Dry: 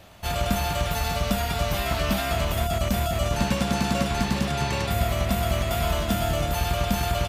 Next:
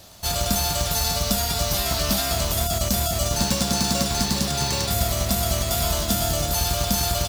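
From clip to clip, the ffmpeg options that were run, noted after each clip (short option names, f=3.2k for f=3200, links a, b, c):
-af "acrusher=bits=5:mode=log:mix=0:aa=0.000001,highshelf=f=3.5k:t=q:w=1.5:g=9.5"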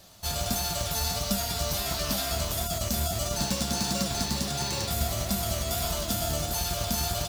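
-af "flanger=delay=5:depth=8.6:regen=55:speed=1.5:shape=sinusoidal,volume=-2dB"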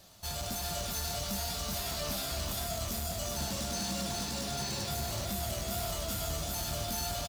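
-af "asoftclip=type=tanh:threshold=-27.5dB,aecho=1:1:376:0.596,volume=-4dB"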